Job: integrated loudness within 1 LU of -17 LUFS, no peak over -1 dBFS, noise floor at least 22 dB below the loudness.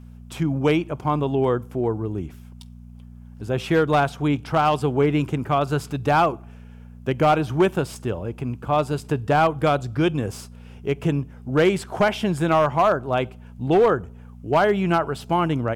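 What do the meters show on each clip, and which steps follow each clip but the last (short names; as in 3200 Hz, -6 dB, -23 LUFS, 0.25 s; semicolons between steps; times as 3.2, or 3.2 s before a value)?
clipped 0.6%; flat tops at -11.0 dBFS; hum 60 Hz; harmonics up to 240 Hz; hum level -40 dBFS; loudness -22.0 LUFS; peak -11.0 dBFS; loudness target -17.0 LUFS
-> clip repair -11 dBFS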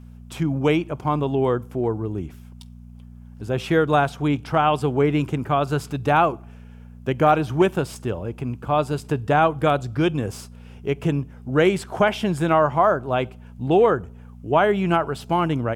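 clipped 0.0%; hum 60 Hz; harmonics up to 240 Hz; hum level -40 dBFS
-> de-hum 60 Hz, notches 4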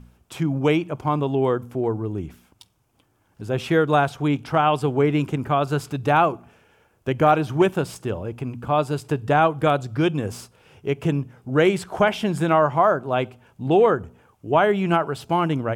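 hum none; loudness -22.0 LUFS; peak -4.5 dBFS; loudness target -17.0 LUFS
-> gain +5 dB; limiter -1 dBFS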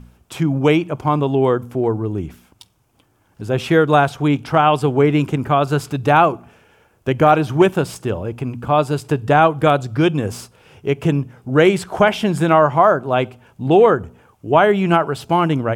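loudness -17.0 LUFS; peak -1.0 dBFS; noise floor -59 dBFS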